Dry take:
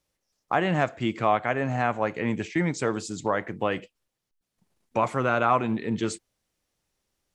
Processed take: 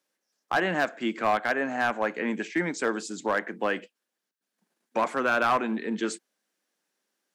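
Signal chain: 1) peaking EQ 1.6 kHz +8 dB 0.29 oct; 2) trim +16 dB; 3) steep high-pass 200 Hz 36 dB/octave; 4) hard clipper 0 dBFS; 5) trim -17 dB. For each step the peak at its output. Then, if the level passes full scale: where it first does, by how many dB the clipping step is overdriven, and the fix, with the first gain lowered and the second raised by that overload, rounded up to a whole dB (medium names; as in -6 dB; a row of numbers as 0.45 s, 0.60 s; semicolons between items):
-6.5 dBFS, +9.5 dBFS, +8.5 dBFS, 0.0 dBFS, -17.0 dBFS; step 2, 8.5 dB; step 2 +7 dB, step 5 -8 dB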